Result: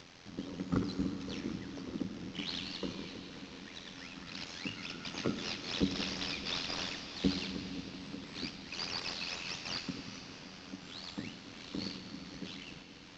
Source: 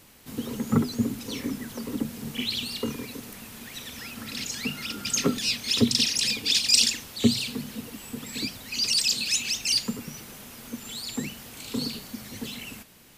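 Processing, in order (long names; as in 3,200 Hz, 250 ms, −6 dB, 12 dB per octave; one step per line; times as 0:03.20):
variable-slope delta modulation 32 kbit/s
high-pass filter 62 Hz
ring modulation 43 Hz
upward compression, threshold −39 dBFS
convolution reverb RT60 5.0 s, pre-delay 45 ms, DRR 7 dB
level −6.5 dB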